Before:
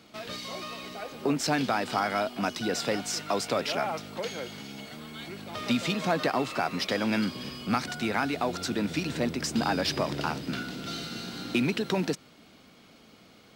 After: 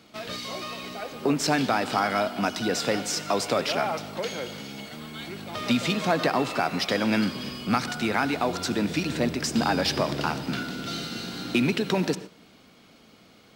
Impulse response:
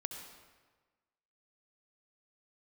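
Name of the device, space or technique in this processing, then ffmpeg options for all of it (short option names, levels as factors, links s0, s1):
keyed gated reverb: -filter_complex "[0:a]asplit=3[s0][s1][s2];[1:a]atrim=start_sample=2205[s3];[s1][s3]afir=irnorm=-1:irlink=0[s4];[s2]apad=whole_len=597818[s5];[s4][s5]sidechaingate=range=0.2:threshold=0.00708:ratio=16:detection=peak,volume=0.562[s6];[s0][s6]amix=inputs=2:normalize=0"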